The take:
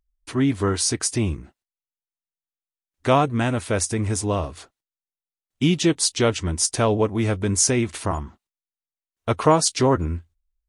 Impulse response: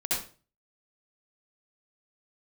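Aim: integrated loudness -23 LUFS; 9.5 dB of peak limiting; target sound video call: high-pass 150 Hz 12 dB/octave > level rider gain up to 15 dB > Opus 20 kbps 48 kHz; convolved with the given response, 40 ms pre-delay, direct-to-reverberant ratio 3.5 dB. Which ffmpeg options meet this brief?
-filter_complex "[0:a]alimiter=limit=0.2:level=0:latency=1,asplit=2[s0][s1];[1:a]atrim=start_sample=2205,adelay=40[s2];[s1][s2]afir=irnorm=-1:irlink=0,volume=0.266[s3];[s0][s3]amix=inputs=2:normalize=0,highpass=150,dynaudnorm=m=5.62,volume=1.19" -ar 48000 -c:a libopus -b:a 20k

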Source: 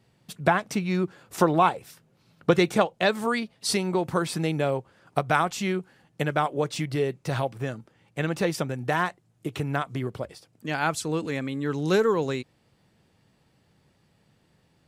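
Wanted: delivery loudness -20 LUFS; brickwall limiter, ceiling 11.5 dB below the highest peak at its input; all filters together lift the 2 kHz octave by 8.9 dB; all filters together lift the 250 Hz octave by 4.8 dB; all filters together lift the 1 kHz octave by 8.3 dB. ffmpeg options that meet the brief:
-af "equalizer=f=250:t=o:g=6.5,equalizer=f=1000:t=o:g=8,equalizer=f=2000:t=o:g=8.5,volume=1.5,alimiter=limit=0.531:level=0:latency=1"

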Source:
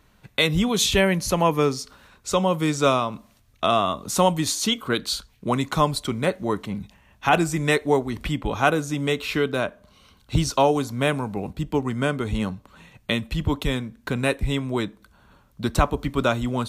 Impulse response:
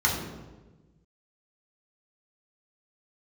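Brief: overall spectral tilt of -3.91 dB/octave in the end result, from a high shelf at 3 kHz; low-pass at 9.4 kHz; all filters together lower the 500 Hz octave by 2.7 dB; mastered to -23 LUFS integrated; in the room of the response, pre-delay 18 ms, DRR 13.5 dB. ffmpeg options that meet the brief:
-filter_complex "[0:a]lowpass=9400,equalizer=f=500:t=o:g=-3.5,highshelf=f=3000:g=5,asplit=2[s0][s1];[1:a]atrim=start_sample=2205,adelay=18[s2];[s1][s2]afir=irnorm=-1:irlink=0,volume=0.0447[s3];[s0][s3]amix=inputs=2:normalize=0,volume=1.06"

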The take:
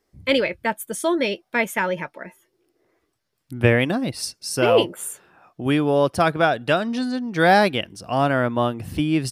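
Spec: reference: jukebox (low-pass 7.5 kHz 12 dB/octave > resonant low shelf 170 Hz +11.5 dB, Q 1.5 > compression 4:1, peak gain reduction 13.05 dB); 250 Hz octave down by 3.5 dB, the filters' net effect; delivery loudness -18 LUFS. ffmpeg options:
-af "lowpass=7500,lowshelf=f=170:t=q:w=1.5:g=11.5,equalizer=f=250:t=o:g=-6,acompressor=threshold=0.126:ratio=4,volume=2.11"

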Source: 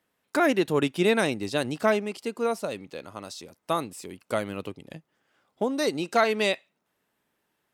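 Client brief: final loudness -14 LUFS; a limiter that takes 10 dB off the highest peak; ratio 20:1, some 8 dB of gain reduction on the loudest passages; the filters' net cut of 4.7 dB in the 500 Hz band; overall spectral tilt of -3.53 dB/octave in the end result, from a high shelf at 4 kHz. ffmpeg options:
-af "equalizer=f=500:t=o:g=-6.5,highshelf=f=4000:g=7,acompressor=threshold=0.0501:ratio=20,volume=15,alimiter=limit=0.794:level=0:latency=1"

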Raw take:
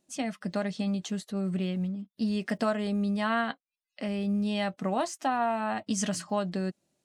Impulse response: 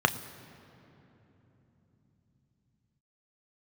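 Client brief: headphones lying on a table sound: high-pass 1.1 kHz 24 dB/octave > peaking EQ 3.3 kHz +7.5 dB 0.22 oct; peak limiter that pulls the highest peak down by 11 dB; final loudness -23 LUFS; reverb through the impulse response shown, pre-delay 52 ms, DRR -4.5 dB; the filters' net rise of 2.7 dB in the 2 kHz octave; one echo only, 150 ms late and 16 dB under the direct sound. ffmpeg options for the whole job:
-filter_complex "[0:a]equalizer=f=2000:t=o:g=3.5,alimiter=level_in=1.26:limit=0.0631:level=0:latency=1,volume=0.794,aecho=1:1:150:0.158,asplit=2[s0][s1];[1:a]atrim=start_sample=2205,adelay=52[s2];[s1][s2]afir=irnorm=-1:irlink=0,volume=0.355[s3];[s0][s3]amix=inputs=2:normalize=0,highpass=f=1100:w=0.5412,highpass=f=1100:w=1.3066,equalizer=f=3300:t=o:w=0.22:g=7.5,volume=4.47"

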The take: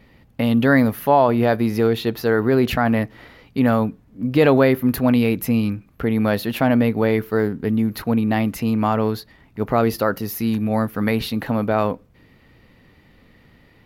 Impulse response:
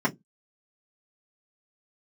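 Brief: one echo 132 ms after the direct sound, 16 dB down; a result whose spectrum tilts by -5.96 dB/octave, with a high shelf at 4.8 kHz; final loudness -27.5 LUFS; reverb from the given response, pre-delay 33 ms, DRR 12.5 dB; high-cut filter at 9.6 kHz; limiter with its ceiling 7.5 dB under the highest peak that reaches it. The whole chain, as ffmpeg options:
-filter_complex "[0:a]lowpass=9600,highshelf=f=4800:g=5.5,alimiter=limit=0.282:level=0:latency=1,aecho=1:1:132:0.158,asplit=2[s0][s1];[1:a]atrim=start_sample=2205,adelay=33[s2];[s1][s2]afir=irnorm=-1:irlink=0,volume=0.0562[s3];[s0][s3]amix=inputs=2:normalize=0,volume=0.473"

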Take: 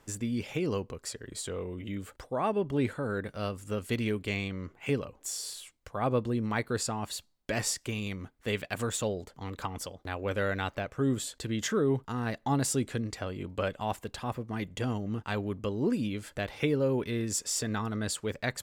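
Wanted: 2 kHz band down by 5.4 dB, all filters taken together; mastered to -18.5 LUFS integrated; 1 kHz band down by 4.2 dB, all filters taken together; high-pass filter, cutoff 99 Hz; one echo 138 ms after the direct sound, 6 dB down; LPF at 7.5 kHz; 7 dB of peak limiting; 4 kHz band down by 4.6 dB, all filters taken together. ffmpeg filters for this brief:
-af "highpass=99,lowpass=7500,equalizer=f=1000:t=o:g=-4.5,equalizer=f=2000:t=o:g=-4.5,equalizer=f=4000:t=o:g=-4,alimiter=limit=0.0708:level=0:latency=1,aecho=1:1:138:0.501,volume=6.68"

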